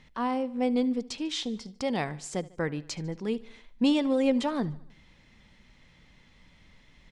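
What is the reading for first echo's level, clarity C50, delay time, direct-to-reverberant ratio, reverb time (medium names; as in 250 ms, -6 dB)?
-21.0 dB, no reverb, 74 ms, no reverb, no reverb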